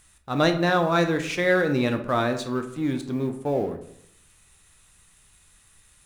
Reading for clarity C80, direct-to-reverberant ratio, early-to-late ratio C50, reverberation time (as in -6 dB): 14.0 dB, 6.0 dB, 10.5 dB, 0.65 s